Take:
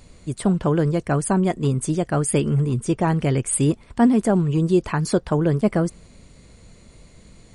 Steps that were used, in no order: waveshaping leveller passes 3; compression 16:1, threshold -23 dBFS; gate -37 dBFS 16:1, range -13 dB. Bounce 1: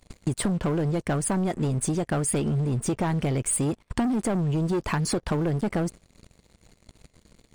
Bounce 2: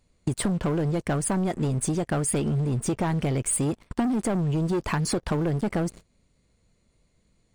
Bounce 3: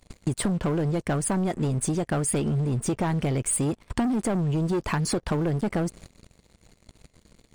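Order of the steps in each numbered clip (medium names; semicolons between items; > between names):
waveshaping leveller > compression > gate; gate > waveshaping leveller > compression; waveshaping leveller > gate > compression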